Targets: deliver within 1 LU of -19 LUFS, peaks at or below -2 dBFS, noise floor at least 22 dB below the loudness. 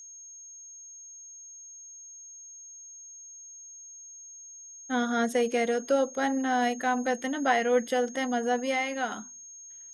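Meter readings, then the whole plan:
steady tone 6.5 kHz; tone level -44 dBFS; loudness -27.5 LUFS; peak level -13.0 dBFS; loudness target -19.0 LUFS
-> band-stop 6.5 kHz, Q 30; trim +8.5 dB

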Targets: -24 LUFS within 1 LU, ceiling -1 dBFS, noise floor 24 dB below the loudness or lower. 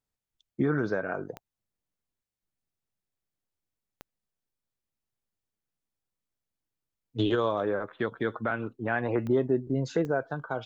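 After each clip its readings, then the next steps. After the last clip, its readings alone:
clicks found 4; loudness -29.5 LUFS; peak level -15.0 dBFS; loudness target -24.0 LUFS
-> de-click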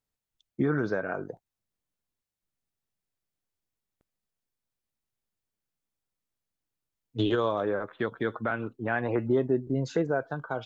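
clicks found 0; loudness -29.5 LUFS; peak level -15.0 dBFS; loudness target -24.0 LUFS
-> trim +5.5 dB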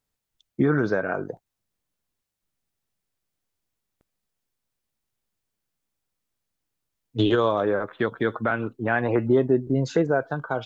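loudness -24.0 LUFS; peak level -9.5 dBFS; noise floor -83 dBFS

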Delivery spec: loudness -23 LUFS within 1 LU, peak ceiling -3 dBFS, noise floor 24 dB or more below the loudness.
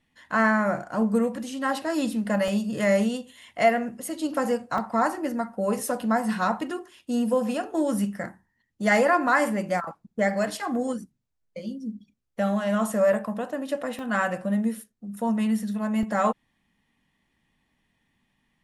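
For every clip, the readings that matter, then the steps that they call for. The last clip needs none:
dropouts 4; longest dropout 2.2 ms; loudness -26.0 LUFS; peak level -9.5 dBFS; loudness target -23.0 LUFS
-> interpolate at 2.48/4.78/13.99/16.03 s, 2.2 ms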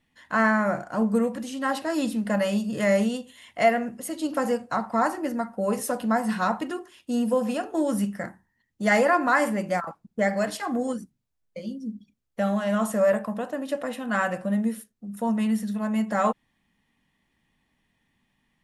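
dropouts 0; loudness -26.0 LUFS; peak level -9.5 dBFS; loudness target -23.0 LUFS
-> trim +3 dB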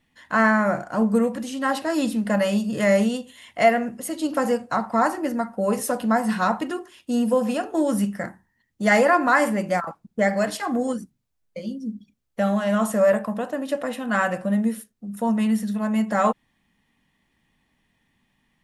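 loudness -23.0 LUFS; peak level -6.5 dBFS; noise floor -71 dBFS

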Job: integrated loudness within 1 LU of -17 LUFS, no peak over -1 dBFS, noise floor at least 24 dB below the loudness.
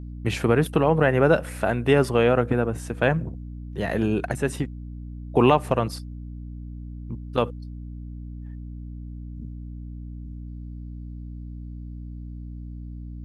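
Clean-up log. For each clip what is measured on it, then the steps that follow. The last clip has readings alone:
hum 60 Hz; highest harmonic 300 Hz; hum level -33 dBFS; loudness -23.0 LUFS; peak level -4.0 dBFS; loudness target -17.0 LUFS
-> de-hum 60 Hz, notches 5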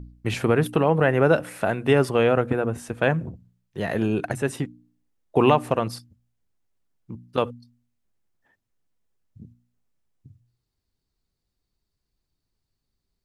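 hum not found; loudness -23.0 LUFS; peak level -4.0 dBFS; loudness target -17.0 LUFS
-> trim +6 dB; peak limiter -1 dBFS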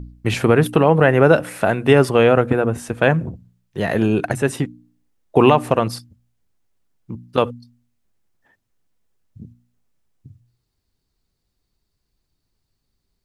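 loudness -17.5 LUFS; peak level -1.0 dBFS; noise floor -75 dBFS

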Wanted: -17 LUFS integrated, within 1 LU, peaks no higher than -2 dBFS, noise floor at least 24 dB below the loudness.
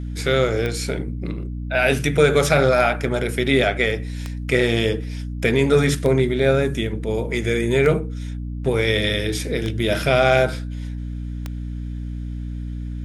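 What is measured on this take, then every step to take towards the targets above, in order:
clicks found 7; hum 60 Hz; highest harmonic 300 Hz; hum level -26 dBFS; loudness -20.0 LUFS; peak level -3.0 dBFS; loudness target -17.0 LUFS
-> de-click; hum notches 60/120/180/240/300 Hz; trim +3 dB; peak limiter -2 dBFS

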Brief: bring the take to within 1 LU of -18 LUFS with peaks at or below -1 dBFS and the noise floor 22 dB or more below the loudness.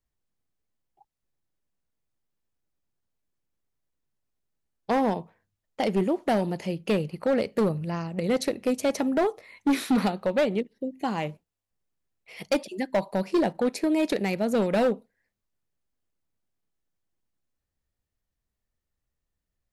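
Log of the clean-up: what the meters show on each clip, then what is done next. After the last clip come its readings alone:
clipped samples 1.6%; clipping level -18.0 dBFS; loudness -27.0 LUFS; peak level -18.0 dBFS; loudness target -18.0 LUFS
-> clip repair -18 dBFS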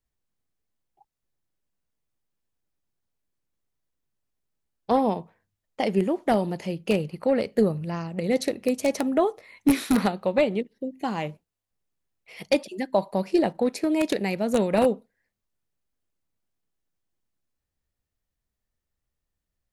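clipped samples 0.0%; loudness -25.5 LUFS; peak level -9.0 dBFS; loudness target -18.0 LUFS
-> trim +7.5 dB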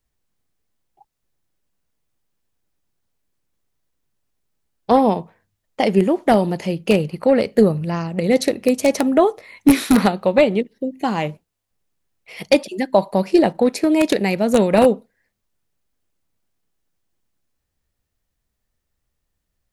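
loudness -18.0 LUFS; peak level -1.5 dBFS; noise floor -77 dBFS

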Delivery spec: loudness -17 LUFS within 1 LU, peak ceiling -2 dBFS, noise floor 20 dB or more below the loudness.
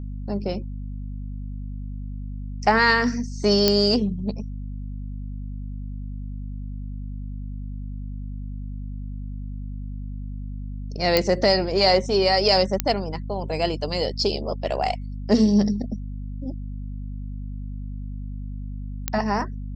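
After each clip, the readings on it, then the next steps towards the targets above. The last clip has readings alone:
clicks found 4; hum 50 Hz; highest harmonic 250 Hz; hum level -29 dBFS; loudness -22.5 LUFS; peak level -3.0 dBFS; loudness target -17.0 LUFS
-> de-click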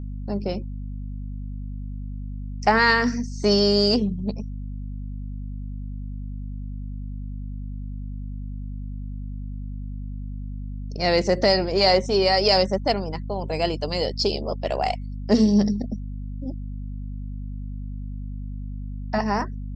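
clicks found 0; hum 50 Hz; highest harmonic 250 Hz; hum level -29 dBFS
-> hum notches 50/100/150/200/250 Hz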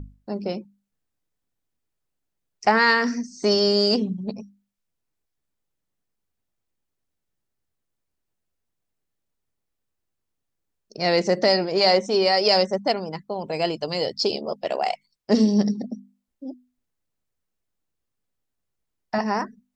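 hum not found; loudness -22.0 LUFS; peak level -5.0 dBFS; loudness target -17.0 LUFS
-> trim +5 dB; peak limiter -2 dBFS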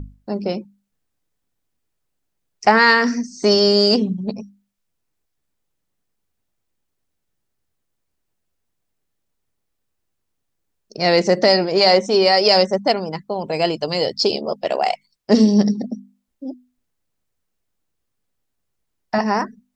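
loudness -17.0 LUFS; peak level -2.0 dBFS; noise floor -75 dBFS

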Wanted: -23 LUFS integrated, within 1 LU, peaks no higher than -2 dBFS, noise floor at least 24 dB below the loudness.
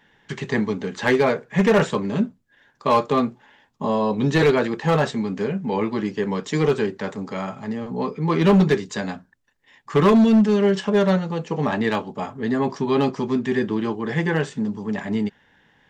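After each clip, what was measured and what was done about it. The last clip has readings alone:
clipped samples 1.2%; clipping level -11.0 dBFS; loudness -21.5 LUFS; peak level -11.0 dBFS; loudness target -23.0 LUFS
-> clip repair -11 dBFS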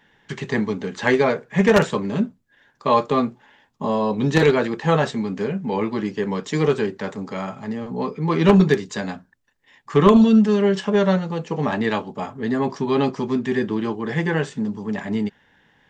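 clipped samples 0.0%; loudness -21.0 LUFS; peak level -2.0 dBFS; loudness target -23.0 LUFS
-> trim -2 dB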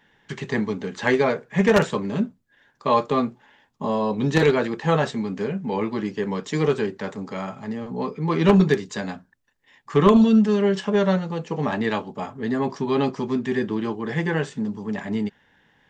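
loudness -23.0 LUFS; peak level -4.0 dBFS; noise floor -64 dBFS

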